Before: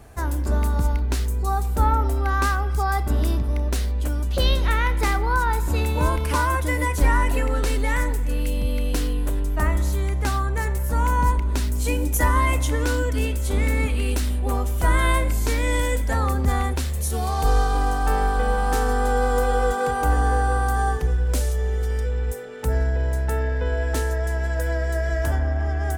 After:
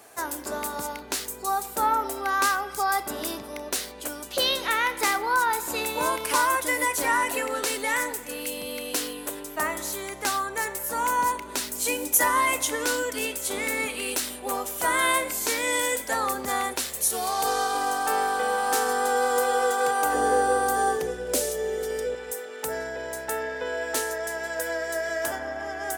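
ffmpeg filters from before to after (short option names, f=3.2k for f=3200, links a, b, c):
-filter_complex "[0:a]asettb=1/sr,asplit=3[a][b][c];[a]atrim=end=20.144[d];[b]atrim=start=20.14:end=22.15,asetpts=PTS-STARTPTS,afade=t=in:d=0.004:c=qsin,afade=t=out:st=2.006:d=0.004:c=qsin,lowshelf=f=720:t=q:w=1.5:g=6[e];[c]atrim=start=22.146[f];[d][e]acrossfade=d=0.004:c1=hsin:c2=qsin[g];[g][f]acrossfade=d=0.004:c1=qsin:c2=hsin,highpass=400,highshelf=f=3.9k:g=7.5"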